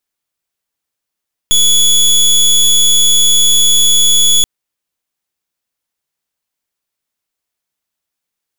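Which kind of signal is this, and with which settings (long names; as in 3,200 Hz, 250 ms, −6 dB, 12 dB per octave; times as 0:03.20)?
pulse wave 3,400 Hz, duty 22% −8.5 dBFS 2.93 s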